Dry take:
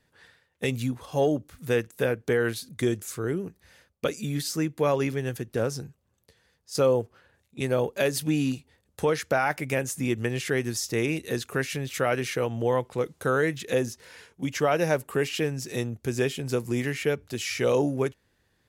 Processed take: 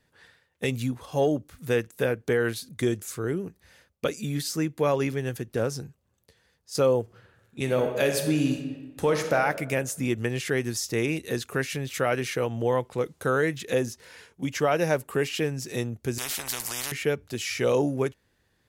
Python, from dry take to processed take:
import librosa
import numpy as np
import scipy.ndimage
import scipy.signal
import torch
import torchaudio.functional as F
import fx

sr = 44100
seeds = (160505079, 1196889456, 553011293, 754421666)

y = fx.reverb_throw(x, sr, start_s=7.02, length_s=2.33, rt60_s=1.3, drr_db=4.5)
y = fx.spectral_comp(y, sr, ratio=10.0, at=(16.18, 16.92))